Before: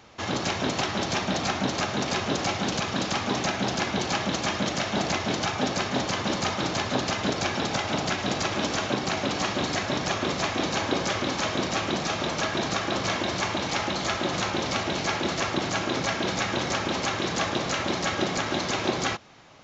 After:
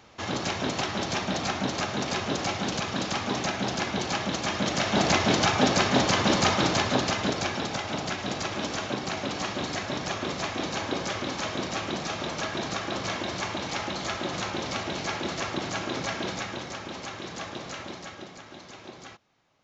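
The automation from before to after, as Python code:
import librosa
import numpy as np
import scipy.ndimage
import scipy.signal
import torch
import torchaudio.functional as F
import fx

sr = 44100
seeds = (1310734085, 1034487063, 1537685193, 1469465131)

y = fx.gain(x, sr, db=fx.line((4.45, -2.0), (5.14, 4.5), (6.54, 4.5), (7.76, -4.0), (16.24, -4.0), (16.71, -10.0), (17.79, -10.0), (18.37, -18.0)))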